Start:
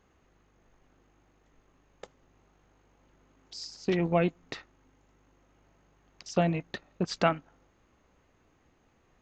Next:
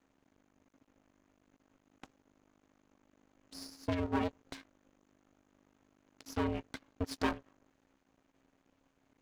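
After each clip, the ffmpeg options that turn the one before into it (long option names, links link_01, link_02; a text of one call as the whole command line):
ffmpeg -i in.wav -af "aeval=exprs='max(val(0),0)':channel_layout=same,aeval=exprs='val(0)*sin(2*PI*270*n/s)':channel_layout=same" out.wav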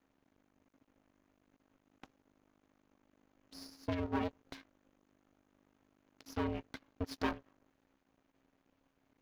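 ffmpeg -i in.wav -af "equalizer=frequency=8200:width=2.2:gain=-9,volume=-2.5dB" out.wav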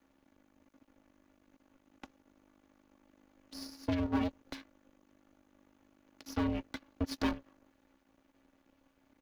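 ffmpeg -i in.wav -filter_complex "[0:a]aecho=1:1:3.5:0.39,acrossover=split=290|3000[link_01][link_02][link_03];[link_02]acompressor=threshold=-42dB:ratio=2[link_04];[link_01][link_04][link_03]amix=inputs=3:normalize=0,volume=4.5dB" out.wav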